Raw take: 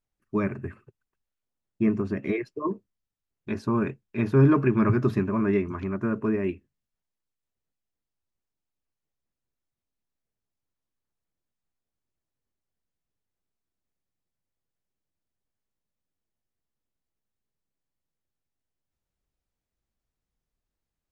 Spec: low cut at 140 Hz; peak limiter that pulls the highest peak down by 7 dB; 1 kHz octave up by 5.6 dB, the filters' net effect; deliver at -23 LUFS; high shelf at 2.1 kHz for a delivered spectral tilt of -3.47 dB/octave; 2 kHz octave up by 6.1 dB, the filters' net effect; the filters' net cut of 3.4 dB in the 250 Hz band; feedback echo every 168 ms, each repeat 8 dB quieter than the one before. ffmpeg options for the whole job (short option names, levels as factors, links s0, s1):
-af "highpass=140,equalizer=f=250:t=o:g=-4,equalizer=f=1000:t=o:g=5,equalizer=f=2000:t=o:g=8.5,highshelf=f=2100:g=-4,alimiter=limit=0.158:level=0:latency=1,aecho=1:1:168|336|504|672|840:0.398|0.159|0.0637|0.0255|0.0102,volume=1.88"